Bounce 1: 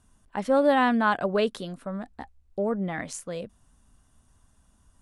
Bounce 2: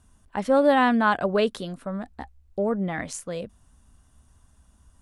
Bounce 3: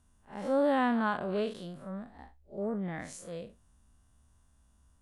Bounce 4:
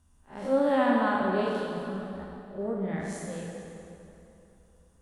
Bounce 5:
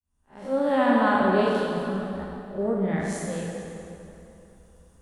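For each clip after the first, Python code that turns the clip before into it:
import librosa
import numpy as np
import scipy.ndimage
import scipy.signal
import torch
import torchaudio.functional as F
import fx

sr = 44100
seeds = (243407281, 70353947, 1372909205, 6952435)

y1 = fx.peak_eq(x, sr, hz=67.0, db=6.0, octaves=0.77)
y1 = F.gain(torch.from_numpy(y1), 2.0).numpy()
y2 = fx.spec_blur(y1, sr, span_ms=114.0)
y2 = F.gain(torch.from_numpy(y2), -6.5).numpy()
y3 = fx.rev_plate(y2, sr, seeds[0], rt60_s=3.0, hf_ratio=0.75, predelay_ms=0, drr_db=-1.5)
y4 = fx.fade_in_head(y3, sr, length_s=1.21)
y4 = F.gain(torch.from_numpy(y4), 6.0).numpy()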